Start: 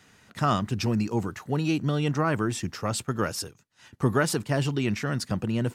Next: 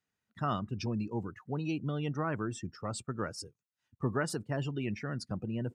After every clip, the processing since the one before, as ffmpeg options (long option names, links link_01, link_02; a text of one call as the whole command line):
ffmpeg -i in.wav -af "afftdn=noise_reduction=22:noise_floor=-36,volume=-8.5dB" out.wav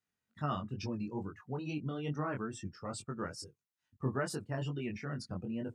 ffmpeg -i in.wav -af "flanger=delay=20:depth=3.3:speed=2.3" out.wav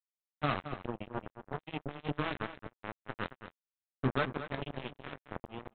ffmpeg -i in.wav -filter_complex "[0:a]aresample=8000,acrusher=bits=4:mix=0:aa=0.5,aresample=44100,asplit=2[link_01][link_02];[link_02]adelay=221.6,volume=-11dB,highshelf=frequency=4000:gain=-4.99[link_03];[link_01][link_03]amix=inputs=2:normalize=0,volume=3dB" out.wav